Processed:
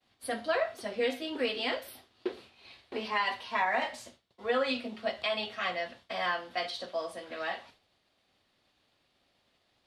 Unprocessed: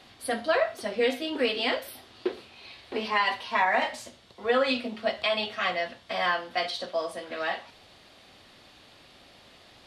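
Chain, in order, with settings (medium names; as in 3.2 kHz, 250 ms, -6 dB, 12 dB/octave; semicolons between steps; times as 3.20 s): expander -44 dBFS; trim -5 dB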